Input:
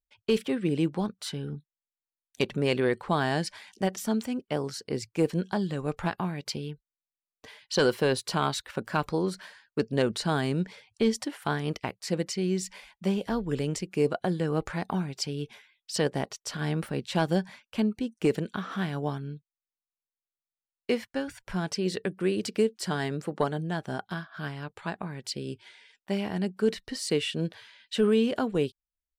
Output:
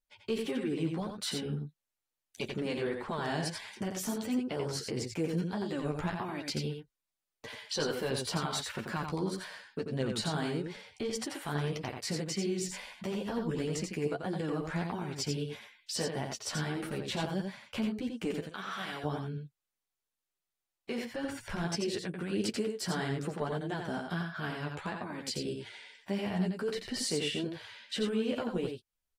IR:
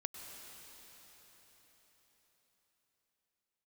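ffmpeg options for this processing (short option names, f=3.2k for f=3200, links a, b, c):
-filter_complex "[0:a]asettb=1/sr,asplit=3[a][b][c];[a]atrim=end=18.394[d];[b]atrim=start=18.39:end=19.04,asetpts=PTS-STARTPTS,afade=t=in:d=0.004:c=qsin,afade=t=out:st=0.646:d=0.004:c=qsin,highpass=f=1.3k:p=1[e];[c]atrim=start=19.036[f];[d][e]acrossfade=d=0.004:c1=hsin:c2=qsin[g];[g][f]acrossfade=d=0.004:c1=qsin:c2=hsin,acompressor=threshold=-40dB:ratio=1.5,alimiter=level_in=4dB:limit=-24dB:level=0:latency=1:release=42,volume=-4dB,flanger=delay=7.7:depth=5.9:regen=0:speed=1.6:shape=triangular,aecho=1:1:88:0.562,volume=5.5dB" -ar 48000 -c:a aac -b:a 48k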